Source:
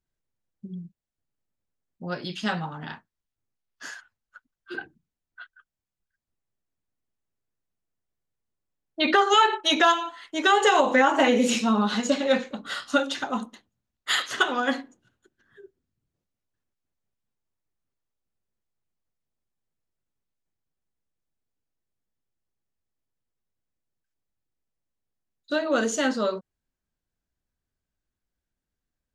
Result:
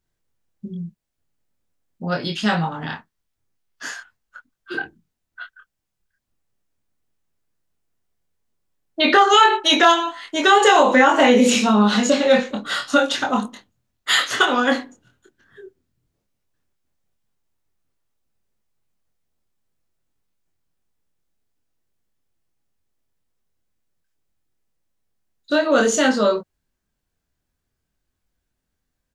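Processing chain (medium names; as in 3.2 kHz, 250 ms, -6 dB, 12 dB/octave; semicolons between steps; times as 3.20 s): doubling 24 ms -4 dB; in parallel at -2.5 dB: peak limiter -16 dBFS, peak gain reduction 10.5 dB; on the sum: trim +2 dB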